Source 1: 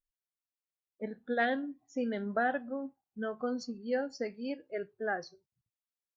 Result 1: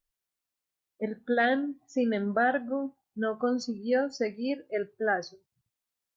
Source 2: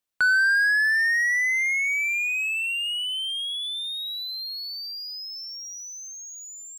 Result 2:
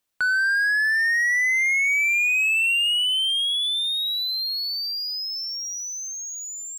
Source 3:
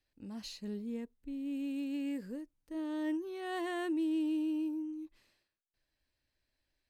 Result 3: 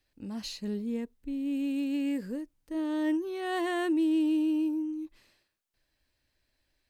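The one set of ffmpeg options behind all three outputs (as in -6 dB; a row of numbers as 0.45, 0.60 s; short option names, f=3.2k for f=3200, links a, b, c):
-af "alimiter=limit=-23dB:level=0:latency=1:release=23,volume=6.5dB"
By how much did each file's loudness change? +6.0, +2.5, +6.5 LU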